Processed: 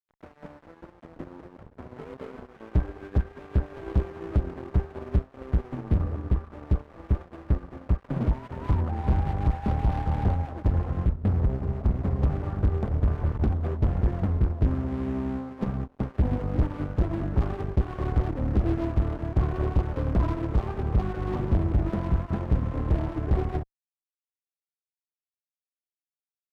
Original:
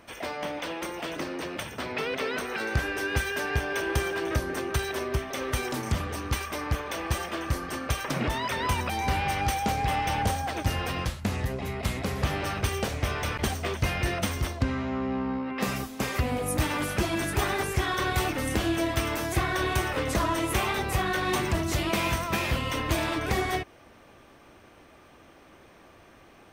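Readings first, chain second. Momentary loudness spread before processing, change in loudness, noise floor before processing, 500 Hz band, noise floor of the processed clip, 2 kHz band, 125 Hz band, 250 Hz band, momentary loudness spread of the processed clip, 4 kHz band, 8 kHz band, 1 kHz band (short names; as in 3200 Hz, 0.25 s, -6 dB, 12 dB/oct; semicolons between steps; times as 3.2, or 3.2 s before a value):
5 LU, +1.0 dB, -54 dBFS, -3.5 dB, under -85 dBFS, -16.5 dB, +5.5 dB, +1.0 dB, 6 LU, under -20 dB, under -25 dB, -8.0 dB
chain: LPF 1400 Hz 24 dB/oct; tilt -4.5 dB/oct; crossover distortion -30.5 dBFS; tube stage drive 16 dB, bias 0.35; upward expander 1.5:1, over -43 dBFS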